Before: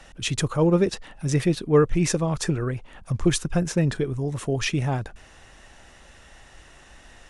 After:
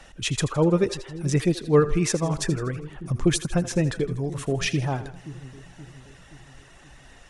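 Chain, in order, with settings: reverb removal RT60 0.56 s; two-band feedback delay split 370 Hz, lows 525 ms, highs 81 ms, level -14 dB

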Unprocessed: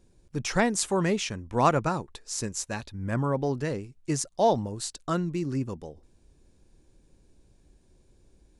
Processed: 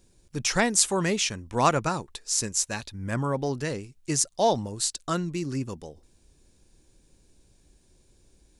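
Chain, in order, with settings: treble shelf 2.3 kHz +9.5 dB; trim -1 dB

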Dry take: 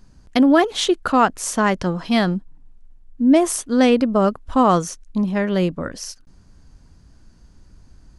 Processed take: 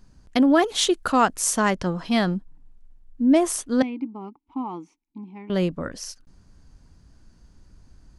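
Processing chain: 0.62–1.71 s: treble shelf 5.1 kHz +9 dB; 3.82–5.50 s: vowel filter u; trim -3.5 dB

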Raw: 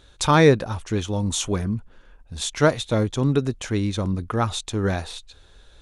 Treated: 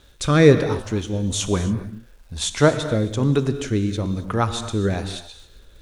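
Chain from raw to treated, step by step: rotary cabinet horn 1.1 Hz; crackle 570 per s -52 dBFS; gated-style reverb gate 300 ms flat, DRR 10 dB; trim +3 dB

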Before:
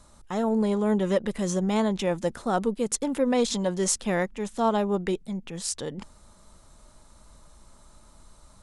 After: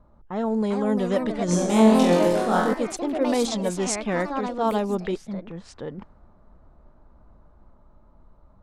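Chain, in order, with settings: 1.46–2.73 s: flutter echo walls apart 3.9 m, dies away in 0.81 s; ever faster or slower copies 448 ms, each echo +3 st, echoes 3, each echo -6 dB; level-controlled noise filter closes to 890 Hz, open at -17.5 dBFS

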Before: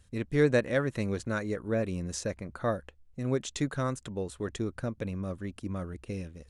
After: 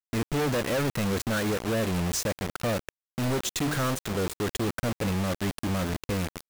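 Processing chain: 3.22–5.31 s: de-hum 74.53 Hz, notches 7; companded quantiser 2-bit

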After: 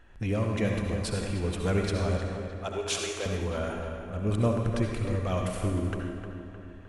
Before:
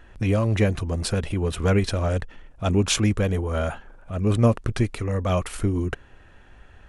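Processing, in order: 2.17–3.26 s: Chebyshev high-pass 390 Hz, order 4; filtered feedback delay 307 ms, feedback 55%, low-pass 2.9 kHz, level -7.5 dB; reverberation RT60 1.1 s, pre-delay 57 ms, DRR 2.5 dB; trim -7.5 dB

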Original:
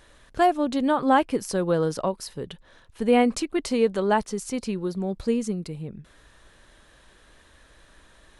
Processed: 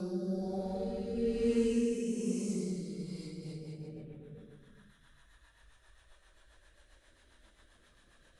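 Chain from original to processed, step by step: reverb removal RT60 1.4 s; Paulstretch 4.1×, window 0.50 s, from 4.91 s; rotary cabinet horn 1.1 Hz, later 7.5 Hz, at 2.98 s; trim -3.5 dB

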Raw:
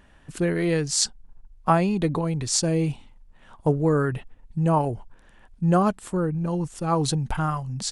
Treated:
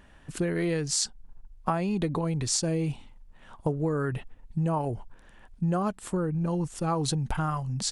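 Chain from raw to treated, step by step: compression 6:1, threshold -24 dBFS, peak gain reduction 10 dB

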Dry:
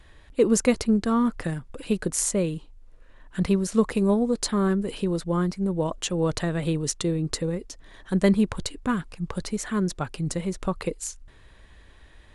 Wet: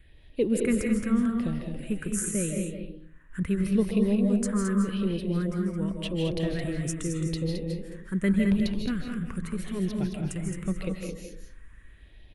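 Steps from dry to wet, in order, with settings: phase shifter stages 4, 0.84 Hz, lowest notch 650–1400 Hz; delay 217 ms -6.5 dB; on a send at -2.5 dB: reverberation RT60 0.50 s, pre-delay 115 ms; on the sum: trim -4 dB

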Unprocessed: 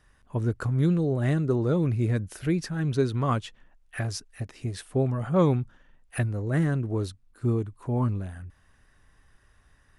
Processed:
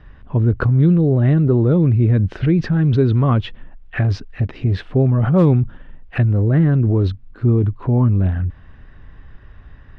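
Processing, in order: low-pass 3.6 kHz 24 dB/octave; bass shelf 450 Hz +10 dB; in parallel at +0.5 dB: compressor with a negative ratio -25 dBFS, ratio -1; on the sum: hard clipper -4.5 dBFS, distortion -41 dB

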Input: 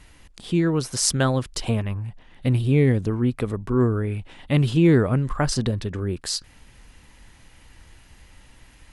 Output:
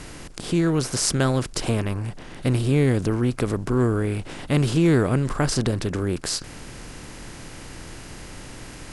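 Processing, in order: spectral levelling over time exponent 0.6; trim -3 dB

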